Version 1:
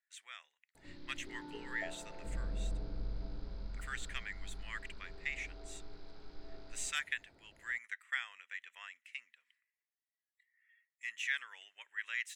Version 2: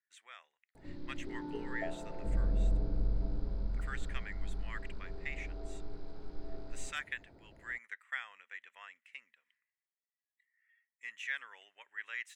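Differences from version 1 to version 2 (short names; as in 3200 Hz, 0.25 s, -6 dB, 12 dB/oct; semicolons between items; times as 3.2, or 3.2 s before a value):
background: remove air absorption 74 m; master: add tilt shelf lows +8 dB, about 1400 Hz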